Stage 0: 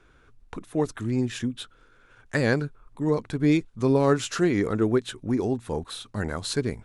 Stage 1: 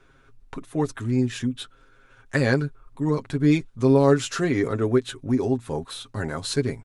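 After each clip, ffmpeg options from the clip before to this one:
ffmpeg -i in.wav -af "aecho=1:1:7.4:0.59" out.wav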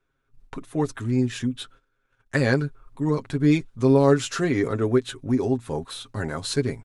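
ffmpeg -i in.wav -af "agate=range=-18dB:threshold=-49dB:ratio=16:detection=peak" out.wav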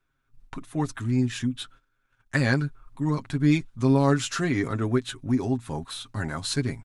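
ffmpeg -i in.wav -af "equalizer=frequency=460:width_type=o:width=0.66:gain=-10" out.wav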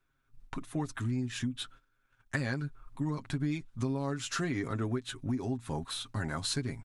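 ffmpeg -i in.wav -af "acompressor=threshold=-28dB:ratio=6,volume=-1.5dB" out.wav

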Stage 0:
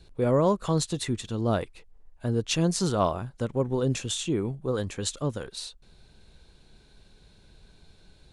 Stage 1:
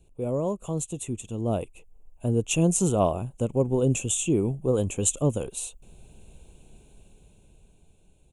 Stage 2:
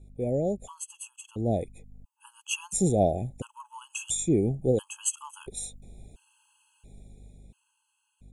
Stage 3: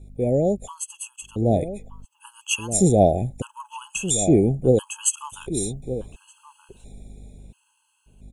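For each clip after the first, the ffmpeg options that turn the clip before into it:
ffmpeg -i in.wav -af "firequalizer=gain_entry='entry(690,0);entry(1800,-20);entry(2600,1);entry(4600,-22);entry(6800,5)':delay=0.05:min_phase=1,dynaudnorm=framelen=250:gausssize=13:maxgain=12dB,volume=-5dB" out.wav
ffmpeg -i in.wav -af "aeval=exprs='val(0)+0.00316*(sin(2*PI*50*n/s)+sin(2*PI*2*50*n/s)/2+sin(2*PI*3*50*n/s)/3+sin(2*PI*4*50*n/s)/4+sin(2*PI*5*50*n/s)/5)':channel_layout=same,afftfilt=real='re*gt(sin(2*PI*0.73*pts/sr)*(1-2*mod(floor(b*sr/1024/840),2)),0)':imag='im*gt(sin(2*PI*0.73*pts/sr)*(1-2*mod(floor(b*sr/1024/840),2)),0)':win_size=1024:overlap=0.75" out.wav
ffmpeg -i in.wav -filter_complex "[0:a]asplit=2[link_01][link_02];[link_02]adelay=1224,volume=-11dB,highshelf=frequency=4000:gain=-27.6[link_03];[link_01][link_03]amix=inputs=2:normalize=0,volume=7dB" out.wav

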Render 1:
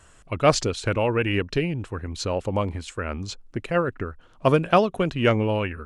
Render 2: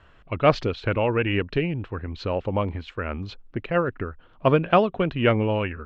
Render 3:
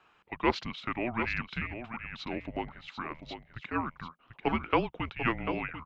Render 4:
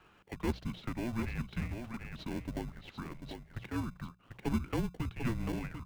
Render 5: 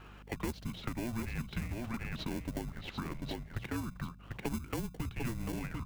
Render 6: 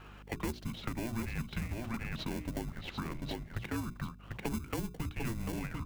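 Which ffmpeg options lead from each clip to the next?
ffmpeg -i in.wav -af "lowpass=frequency=3600:width=0.5412,lowpass=frequency=3600:width=1.3066" out.wav
ffmpeg -i in.wav -af "highpass=frequency=1200:poles=1,afreqshift=-240,aecho=1:1:742:0.355,volume=-3dB" out.wav
ffmpeg -i in.wav -filter_complex "[0:a]bandreject=frequency=60:width_type=h:width=6,bandreject=frequency=120:width_type=h:width=6,bandreject=frequency=180:width_type=h:width=6,acrossover=split=240[link_01][link_02];[link_02]acompressor=threshold=-54dB:ratio=2[link_03];[link_01][link_03]amix=inputs=2:normalize=0,asplit=2[link_04][link_05];[link_05]acrusher=samples=35:mix=1:aa=0.000001,volume=-3dB[link_06];[link_04][link_06]amix=inputs=2:normalize=0" out.wav
ffmpeg -i in.wav -filter_complex "[0:a]acrossover=split=5700[link_01][link_02];[link_01]acompressor=threshold=-41dB:ratio=6[link_03];[link_03][link_02]amix=inputs=2:normalize=0,aeval=exprs='val(0)+0.001*(sin(2*PI*50*n/s)+sin(2*PI*2*50*n/s)/2+sin(2*PI*3*50*n/s)/3+sin(2*PI*4*50*n/s)/4+sin(2*PI*5*50*n/s)/5)':channel_layout=same,volume=7dB" out.wav
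ffmpeg -i in.wav -af "bandreject=frequency=60:width_type=h:width=6,bandreject=frequency=120:width_type=h:width=6,bandreject=frequency=180:width_type=h:width=6,bandreject=frequency=240:width_type=h:width=6,bandreject=frequency=300:width_type=h:width=6,bandreject=frequency=360:width_type=h:width=6,bandreject=frequency=420:width_type=h:width=6,volume=1dB" out.wav

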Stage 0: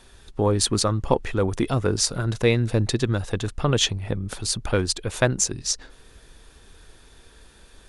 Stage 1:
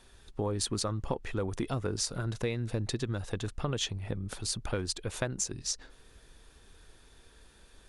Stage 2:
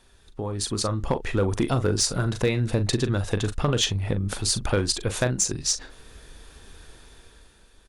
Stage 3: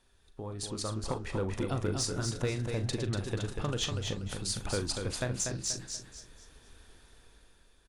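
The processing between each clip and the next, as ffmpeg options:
ffmpeg -i in.wav -af "acompressor=threshold=-21dB:ratio=6,volume=-7dB" out.wav
ffmpeg -i in.wav -filter_complex "[0:a]dynaudnorm=framelen=180:gausssize=9:maxgain=9.5dB,asplit=2[link_01][link_02];[link_02]adelay=40,volume=-11dB[link_03];[link_01][link_03]amix=inputs=2:normalize=0,volume=13.5dB,asoftclip=hard,volume=-13.5dB" out.wav
ffmpeg -i in.wav -filter_complex "[0:a]flanger=delay=7:depth=8.6:regen=90:speed=1.7:shape=sinusoidal,asplit=2[link_01][link_02];[link_02]aecho=0:1:241|482|723|964:0.531|0.17|0.0544|0.0174[link_03];[link_01][link_03]amix=inputs=2:normalize=0,volume=-5.5dB" out.wav

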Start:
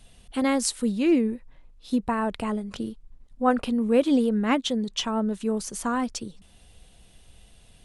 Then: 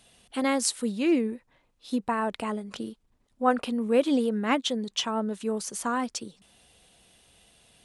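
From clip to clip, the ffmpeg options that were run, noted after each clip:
ffmpeg -i in.wav -af "highpass=frequency=300:poles=1" out.wav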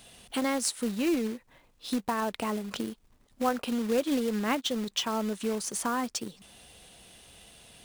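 ffmpeg -i in.wav -af "acrusher=bits=3:mode=log:mix=0:aa=0.000001,acompressor=threshold=-39dB:ratio=2,volume=6dB" out.wav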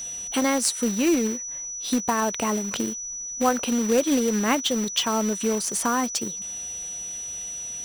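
ffmpeg -i in.wav -af "aeval=exprs='val(0)+0.0141*sin(2*PI*5900*n/s)':channel_layout=same,volume=6dB" out.wav

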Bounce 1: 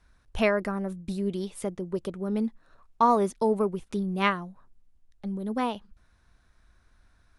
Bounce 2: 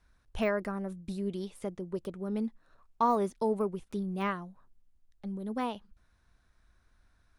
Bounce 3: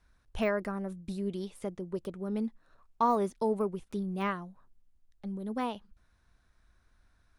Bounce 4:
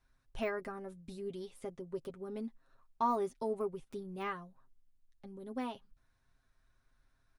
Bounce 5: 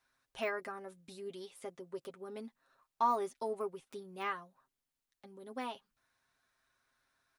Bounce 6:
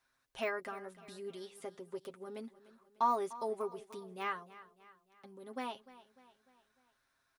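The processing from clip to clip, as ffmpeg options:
ffmpeg -i in.wav -af "deesser=0.95,volume=-5dB" out.wav
ffmpeg -i in.wav -af anull out.wav
ffmpeg -i in.wav -af "aecho=1:1:7.5:0.6,volume=-7dB" out.wav
ffmpeg -i in.wav -af "highpass=frequency=690:poles=1,volume=3.5dB" out.wav
ffmpeg -i in.wav -af "aecho=1:1:299|598|897|1196:0.133|0.0667|0.0333|0.0167" out.wav

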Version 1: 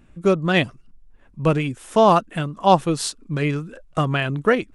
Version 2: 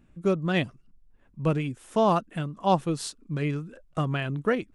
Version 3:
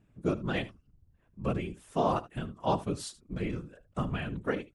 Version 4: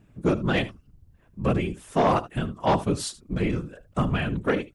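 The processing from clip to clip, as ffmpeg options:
ffmpeg -i in.wav -af "equalizer=frequency=170:width_type=o:width=2.5:gain=4,volume=-9dB" out.wav
ffmpeg -i in.wav -af "afftfilt=real='hypot(re,im)*cos(2*PI*random(0))':imag='hypot(re,im)*sin(2*PI*random(1))':win_size=512:overlap=0.75,aecho=1:1:76:0.133" out.wav
ffmpeg -i in.wav -af "aeval=exprs='0.188*sin(PI/2*1.78*val(0)/0.188)':channel_layout=same" out.wav

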